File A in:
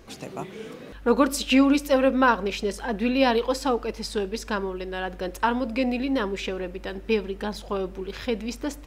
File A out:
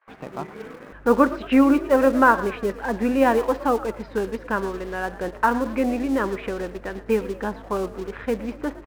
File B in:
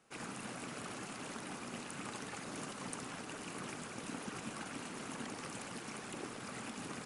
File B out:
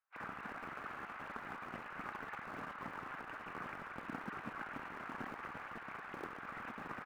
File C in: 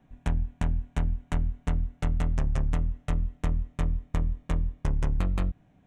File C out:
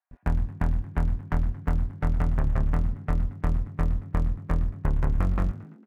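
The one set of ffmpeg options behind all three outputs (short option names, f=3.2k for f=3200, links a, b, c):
-filter_complex "[0:a]lowpass=f=1.7k:w=0.5412,lowpass=f=1.7k:w=1.3066,agate=range=-21dB:threshold=-50dB:ratio=16:detection=peak,acrossover=split=820[a][b];[a]aeval=exprs='sgn(val(0))*max(abs(val(0))-0.00422,0)':c=same[c];[c][b]amix=inputs=2:normalize=0,crystalizer=i=4.5:c=0,asplit=5[d][e][f][g][h];[e]adelay=113,afreqshift=57,volume=-17dB[i];[f]adelay=226,afreqshift=114,volume=-23.4dB[j];[g]adelay=339,afreqshift=171,volume=-29.8dB[k];[h]adelay=452,afreqshift=228,volume=-36.1dB[l];[d][i][j][k][l]amix=inputs=5:normalize=0,volume=2.5dB"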